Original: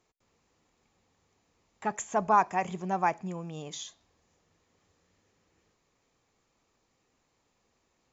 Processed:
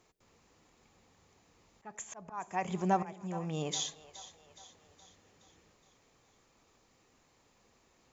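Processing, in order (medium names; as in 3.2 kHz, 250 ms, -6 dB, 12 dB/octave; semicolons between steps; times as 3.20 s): compression 1.5:1, threshold -35 dBFS, peak gain reduction 6.5 dB; slow attack 603 ms; two-band feedback delay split 530 Hz, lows 96 ms, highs 419 ms, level -15 dB; trim +5.5 dB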